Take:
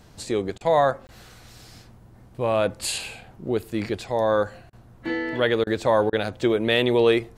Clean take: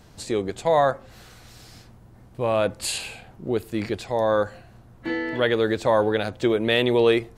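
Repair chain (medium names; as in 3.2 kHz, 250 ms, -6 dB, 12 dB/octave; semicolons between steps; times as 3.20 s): interpolate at 1.07 s, 19 ms; interpolate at 0.58/4.70/5.64/6.10 s, 27 ms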